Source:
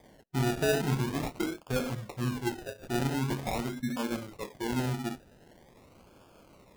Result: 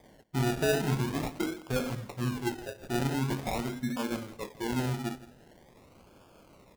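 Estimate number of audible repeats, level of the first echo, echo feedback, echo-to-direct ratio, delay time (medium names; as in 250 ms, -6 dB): 2, -18.0 dB, 22%, -18.0 dB, 164 ms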